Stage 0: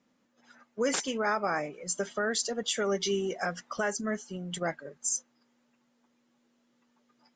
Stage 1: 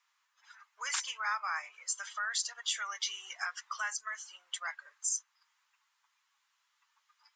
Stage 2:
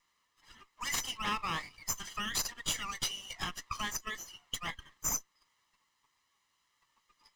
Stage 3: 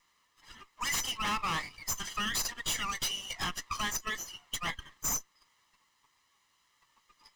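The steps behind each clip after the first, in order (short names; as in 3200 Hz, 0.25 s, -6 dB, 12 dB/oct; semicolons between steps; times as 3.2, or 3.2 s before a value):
Chebyshev high-pass 1000 Hz, order 4; in parallel at +1 dB: compressor, threshold -40 dBFS, peak gain reduction 12.5 dB; on the sum: gain -4 dB
minimum comb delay 0.99 ms; gain +2 dB
overloaded stage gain 33 dB; gain +5 dB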